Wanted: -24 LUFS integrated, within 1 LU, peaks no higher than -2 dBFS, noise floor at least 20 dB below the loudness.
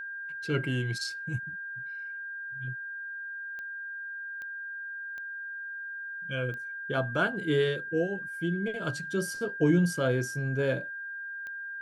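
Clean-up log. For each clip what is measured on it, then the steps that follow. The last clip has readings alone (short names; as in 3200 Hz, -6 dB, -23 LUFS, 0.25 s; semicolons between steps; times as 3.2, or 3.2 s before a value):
clicks 5; steady tone 1600 Hz; tone level -36 dBFS; loudness -32.0 LUFS; peak -13.5 dBFS; loudness target -24.0 LUFS
-> de-click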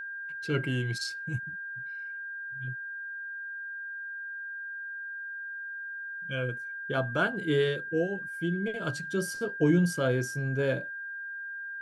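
clicks 0; steady tone 1600 Hz; tone level -36 dBFS
-> notch 1600 Hz, Q 30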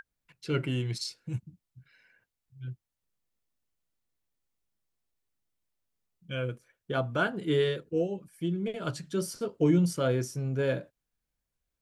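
steady tone none; loudness -31.0 LUFS; peak -14.0 dBFS; loudness target -24.0 LUFS
-> gain +7 dB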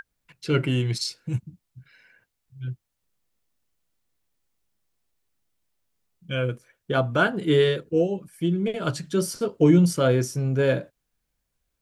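loudness -24.0 LUFS; peak -7.0 dBFS; noise floor -79 dBFS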